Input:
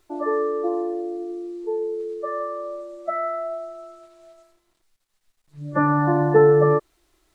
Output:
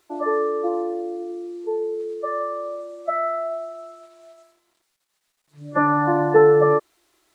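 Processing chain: high-pass 360 Hz 6 dB/octave; trim +3 dB

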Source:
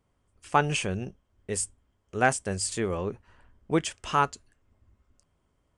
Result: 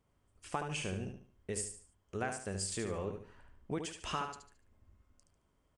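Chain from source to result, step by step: compression 5:1, threshold -32 dBFS, peak gain reduction 14 dB; feedback delay 73 ms, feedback 34%, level -6.5 dB; trim -3.5 dB

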